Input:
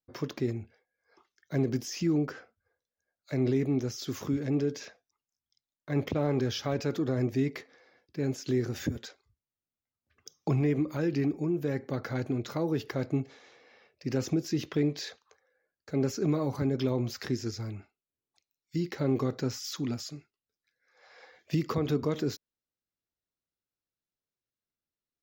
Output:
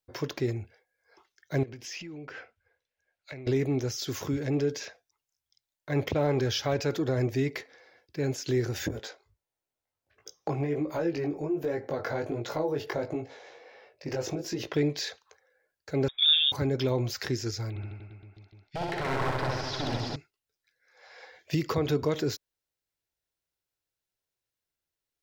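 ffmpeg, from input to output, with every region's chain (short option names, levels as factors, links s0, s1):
-filter_complex "[0:a]asettb=1/sr,asplit=3[s0][s1][s2];[s0]atrim=end=1.634[s3];[s1]atrim=start=1.63:end=3.47,asetpts=PTS-STARTPTS,afade=t=in:d=0.004:c=qsin,afade=t=out:st=1.836:d=0.004:c=qsin,lowpass=f=3800:p=1,equalizer=f=2500:t=o:w=1:g=9,acompressor=threshold=0.00891:ratio=6:attack=3.2:release=140:knee=1:detection=peak[s4];[s2]atrim=start=3.466[s5];[s3][s4]acrossfade=d=0.004:c1=hsin:c2=qsin[s6];[s6][s5]acrossfade=d=0.004:c1=qsin:c2=hsin,asettb=1/sr,asplit=3[s7][s8][s9];[s7]atrim=end=8.884[s10];[s8]atrim=start=8.88:end=14.74,asetpts=PTS-STARTPTS,afade=t=in:d=0.004:c=qsin,afade=t=out:st=5.856:d=0.004:c=qsin,equalizer=f=620:w=0.58:g=9.5,acompressor=threshold=0.0447:ratio=2.5:attack=3.2:release=140:knee=1:detection=peak,flanger=delay=17.5:depth=3.8:speed=1.4[s11];[s9]atrim=start=14.736[s12];[s10][s11]acrossfade=d=0.004:c1=hsin:c2=qsin[s13];[s13][s12]acrossfade=d=0.004:c1=qsin:c2=hsin,asettb=1/sr,asplit=3[s14][s15][s16];[s14]atrim=end=16.084[s17];[s15]atrim=start=16.08:end=16.52,asetpts=PTS-STARTPTS,afade=t=in:d=0.004:c=qsin,afade=t=out:st=0.436:d=0.004:c=qsin,agate=range=0.141:threshold=0.0158:ratio=16:release=100:detection=peak,bandreject=f=750:w=6,lowpass=f=3200:t=q:w=0.5098,lowpass=f=3200:t=q:w=0.6013,lowpass=f=3200:t=q:w=0.9,lowpass=f=3200:t=q:w=2.563,afreqshift=-3800[s18];[s16]atrim=start=16.516[s19];[s17][s18]acrossfade=d=0.004:c1=hsin:c2=qsin[s20];[s20][s19]acrossfade=d=0.004:c1=qsin:c2=hsin,asettb=1/sr,asplit=3[s21][s22][s23];[s21]atrim=end=17.704[s24];[s22]atrim=start=17.7:end=20.16,asetpts=PTS-STARTPTS,afade=t=in:d=0.004:c=qsin,afade=t=out:st=2.456:d=0.004:c=qsin,lowpass=f=4100:w=0.5412,lowpass=f=4100:w=1.3066,aeval=exprs='0.0335*(abs(mod(val(0)/0.0335+3,4)-2)-1)':c=same,aecho=1:1:60|129|208.4|299.6|404.5|525.2|664|823.6:0.794|0.631|0.501|0.398|0.316|0.251|0.2|0.158,atrim=end_sample=108486[s25];[s23]atrim=start=20.156[s26];[s24][s25]acrossfade=d=0.004:c1=hsin:c2=qsin[s27];[s27][s26]acrossfade=d=0.004:c1=qsin:c2=hsin,equalizer=f=220:t=o:w=1:g=-9.5,bandreject=f=1200:w=9.1,volume=1.78"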